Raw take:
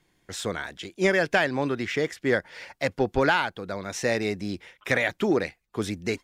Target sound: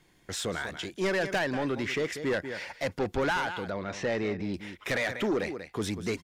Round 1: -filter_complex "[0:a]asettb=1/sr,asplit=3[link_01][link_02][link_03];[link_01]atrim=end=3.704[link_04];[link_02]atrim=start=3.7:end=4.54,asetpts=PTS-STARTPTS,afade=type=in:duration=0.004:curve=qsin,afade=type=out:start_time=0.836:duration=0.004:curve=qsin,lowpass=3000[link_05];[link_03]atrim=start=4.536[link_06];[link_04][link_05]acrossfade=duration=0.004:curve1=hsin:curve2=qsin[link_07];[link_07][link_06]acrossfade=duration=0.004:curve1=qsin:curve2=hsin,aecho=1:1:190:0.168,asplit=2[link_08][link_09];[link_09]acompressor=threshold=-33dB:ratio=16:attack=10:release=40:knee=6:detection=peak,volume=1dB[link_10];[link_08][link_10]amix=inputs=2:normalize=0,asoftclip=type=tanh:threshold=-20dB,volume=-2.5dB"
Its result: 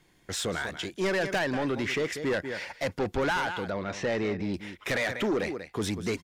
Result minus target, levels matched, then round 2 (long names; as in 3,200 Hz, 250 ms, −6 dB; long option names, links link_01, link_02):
downward compressor: peak gain reduction −8.5 dB
-filter_complex "[0:a]asettb=1/sr,asplit=3[link_01][link_02][link_03];[link_01]atrim=end=3.704[link_04];[link_02]atrim=start=3.7:end=4.54,asetpts=PTS-STARTPTS,afade=type=in:duration=0.004:curve=qsin,afade=type=out:start_time=0.836:duration=0.004:curve=qsin,lowpass=3000[link_05];[link_03]atrim=start=4.536[link_06];[link_04][link_05]acrossfade=duration=0.004:curve1=hsin:curve2=qsin[link_07];[link_07][link_06]acrossfade=duration=0.004:curve1=qsin:curve2=hsin,aecho=1:1:190:0.168,asplit=2[link_08][link_09];[link_09]acompressor=threshold=-42dB:ratio=16:attack=10:release=40:knee=6:detection=peak,volume=1dB[link_10];[link_08][link_10]amix=inputs=2:normalize=0,asoftclip=type=tanh:threshold=-20dB,volume=-2.5dB"